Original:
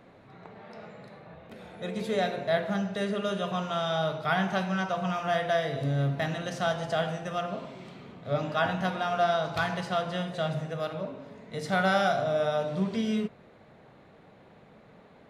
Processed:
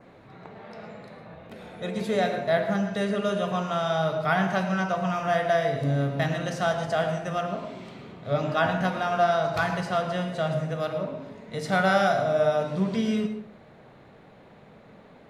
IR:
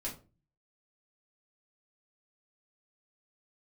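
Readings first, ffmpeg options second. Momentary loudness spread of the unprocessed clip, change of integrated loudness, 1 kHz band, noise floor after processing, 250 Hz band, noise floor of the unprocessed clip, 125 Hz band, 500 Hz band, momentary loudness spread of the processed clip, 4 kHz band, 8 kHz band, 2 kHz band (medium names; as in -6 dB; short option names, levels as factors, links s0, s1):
19 LU, +3.5 dB, +3.5 dB, -52 dBFS, +3.5 dB, -55 dBFS, +3.0 dB, +4.0 dB, 18 LU, 0.0 dB, +3.0 dB, +3.0 dB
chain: -filter_complex "[0:a]asplit=2[s0][s1];[1:a]atrim=start_sample=2205,adelay=106[s2];[s1][s2]afir=irnorm=-1:irlink=0,volume=0.282[s3];[s0][s3]amix=inputs=2:normalize=0,adynamicequalizer=threshold=0.00224:dfrequency=3400:dqfactor=2.8:tfrequency=3400:tqfactor=2.8:attack=5:release=100:ratio=0.375:range=3:mode=cutabove:tftype=bell,volume=1.41"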